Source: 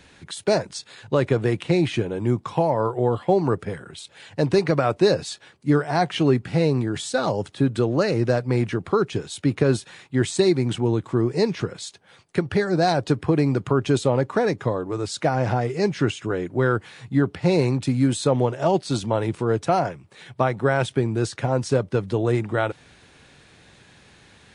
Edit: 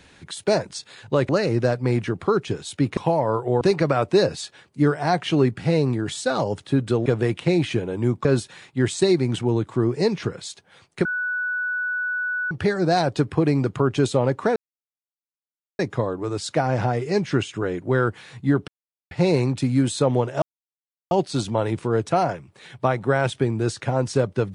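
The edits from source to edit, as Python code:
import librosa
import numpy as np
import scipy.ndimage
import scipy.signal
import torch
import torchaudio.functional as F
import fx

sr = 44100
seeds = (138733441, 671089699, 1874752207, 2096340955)

y = fx.edit(x, sr, fx.swap(start_s=1.29, length_s=1.19, other_s=7.94, other_length_s=1.68),
    fx.cut(start_s=3.12, length_s=1.37),
    fx.insert_tone(at_s=12.42, length_s=1.46, hz=1480.0, db=-22.5),
    fx.insert_silence(at_s=14.47, length_s=1.23),
    fx.insert_silence(at_s=17.36, length_s=0.43),
    fx.insert_silence(at_s=18.67, length_s=0.69), tone=tone)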